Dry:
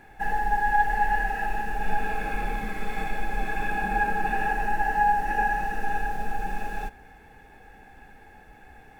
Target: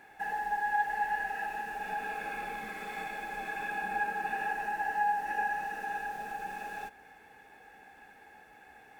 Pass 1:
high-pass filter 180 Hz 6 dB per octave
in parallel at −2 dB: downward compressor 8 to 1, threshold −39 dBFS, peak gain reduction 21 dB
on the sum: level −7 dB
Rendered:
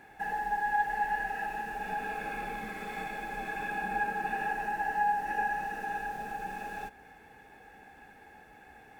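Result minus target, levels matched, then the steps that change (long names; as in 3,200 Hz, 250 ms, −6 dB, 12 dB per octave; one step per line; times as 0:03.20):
250 Hz band +4.0 dB
change: high-pass filter 490 Hz 6 dB per octave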